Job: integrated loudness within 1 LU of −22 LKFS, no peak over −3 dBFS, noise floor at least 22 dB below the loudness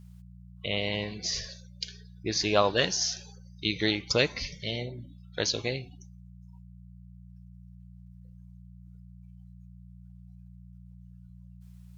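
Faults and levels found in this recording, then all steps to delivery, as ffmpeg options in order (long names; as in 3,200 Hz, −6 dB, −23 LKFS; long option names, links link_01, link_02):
mains hum 60 Hz; hum harmonics up to 180 Hz; level of the hum −47 dBFS; integrated loudness −29.5 LKFS; sample peak −7.0 dBFS; target loudness −22.0 LKFS
→ -af "bandreject=frequency=60:width_type=h:width=4,bandreject=frequency=120:width_type=h:width=4,bandreject=frequency=180:width_type=h:width=4"
-af "volume=7.5dB,alimiter=limit=-3dB:level=0:latency=1"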